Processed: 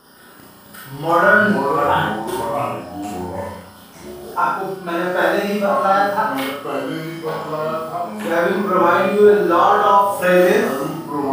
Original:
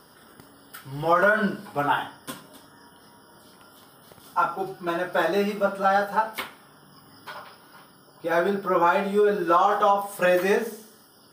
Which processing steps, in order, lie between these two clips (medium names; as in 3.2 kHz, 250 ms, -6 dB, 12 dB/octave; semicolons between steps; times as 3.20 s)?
ever faster or slower copies 159 ms, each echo -4 st, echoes 3, each echo -6 dB; flutter echo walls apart 5.7 m, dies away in 0.38 s; Schroeder reverb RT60 0.39 s, combs from 30 ms, DRR -1.5 dB; trim +1.5 dB